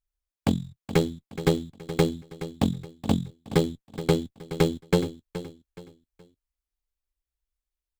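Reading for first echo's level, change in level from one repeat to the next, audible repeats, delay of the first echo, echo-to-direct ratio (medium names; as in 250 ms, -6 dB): -13.0 dB, -9.5 dB, 3, 422 ms, -12.5 dB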